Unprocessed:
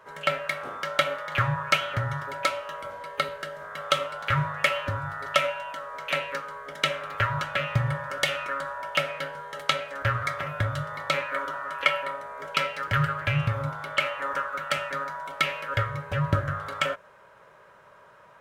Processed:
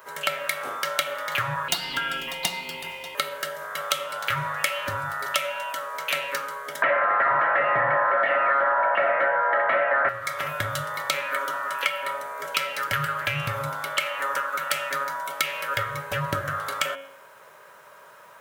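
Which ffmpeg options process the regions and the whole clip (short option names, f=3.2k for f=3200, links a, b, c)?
-filter_complex "[0:a]asettb=1/sr,asplit=3[a][b][c];[a]atrim=end=1.684[d];[b]atrim=start=1.68:end=3.15,asetpts=PTS-STARTPTS,afade=t=in:d=0.004:c=qsin,afade=t=out:st=1.466:d=0.004:c=qsin,aeval=exprs='0.282*(abs(mod(val(0)/0.282+3,4)-2)-1)':c=same,aeval=exprs='val(0)*sin(2*PI*1500*n/s)':c=same[e];[c]atrim=start=3.146[f];[d][e]acrossfade=d=0.004:c1=hsin:c2=qsin[g];[g][f]acrossfade=d=0.004:c1=qsin:c2=hsin,asettb=1/sr,asplit=3[h][i][j];[h]atrim=end=6.824[k];[i]atrim=start=6.82:end=10.09,asetpts=PTS-STARTPTS,afade=t=in:d=0.004:c=qsin,afade=t=out:st=3.266:d=0.004:c=qsin,aecho=1:1:5.8:0.82,atrim=end_sample=144207,asplit=2[l][m];[m]highpass=f=720:p=1,volume=33dB,asoftclip=type=tanh:threshold=-3dB[n];[l][n]amix=inputs=2:normalize=0,lowpass=f=1.4k:p=1,volume=-6dB,highpass=110,equalizer=f=160:t=q:w=4:g=-7,equalizer=f=650:t=q:w=4:g=10,equalizer=f=1k:t=q:w=4:g=4,equalizer=f=1.8k:t=q:w=4:g=9,lowpass=f=2k:w=0.5412,lowpass=f=2k:w=1.3066[o];[j]atrim=start=10.086[p];[k][o]acrossfade=d=0.004:c1=hsin:c2=qsin[q];[q][p]acrossfade=d=0.004:c1=qsin:c2=hsin,aemphasis=mode=production:type=bsi,bandreject=f=91.6:t=h:w=4,bandreject=f=183.2:t=h:w=4,bandreject=f=274.8:t=h:w=4,bandreject=f=366.4:t=h:w=4,bandreject=f=458:t=h:w=4,bandreject=f=549.6:t=h:w=4,bandreject=f=641.2:t=h:w=4,bandreject=f=732.8:t=h:w=4,bandreject=f=824.4:t=h:w=4,bandreject=f=916:t=h:w=4,bandreject=f=1.0076k:t=h:w=4,bandreject=f=1.0992k:t=h:w=4,bandreject=f=1.1908k:t=h:w=4,bandreject=f=1.2824k:t=h:w=4,bandreject=f=1.374k:t=h:w=4,bandreject=f=1.4656k:t=h:w=4,bandreject=f=1.5572k:t=h:w=4,bandreject=f=1.6488k:t=h:w=4,bandreject=f=1.7404k:t=h:w=4,bandreject=f=1.832k:t=h:w=4,bandreject=f=1.9236k:t=h:w=4,bandreject=f=2.0152k:t=h:w=4,bandreject=f=2.1068k:t=h:w=4,bandreject=f=2.1984k:t=h:w=4,bandreject=f=2.29k:t=h:w=4,bandreject=f=2.3816k:t=h:w=4,bandreject=f=2.4732k:t=h:w=4,bandreject=f=2.5648k:t=h:w=4,bandreject=f=2.6564k:t=h:w=4,bandreject=f=2.748k:t=h:w=4,bandreject=f=2.8396k:t=h:w=4,bandreject=f=2.9312k:t=h:w=4,bandreject=f=3.0228k:t=h:w=4,bandreject=f=3.1144k:t=h:w=4,bandreject=f=3.206k:t=h:w=4,bandreject=f=3.2976k:t=h:w=4,bandreject=f=3.3892k:t=h:w=4,bandreject=f=3.4808k:t=h:w=4,bandreject=f=3.5724k:t=h:w=4,bandreject=f=3.664k:t=h:w=4,acompressor=threshold=-27dB:ratio=4,volume=4.5dB"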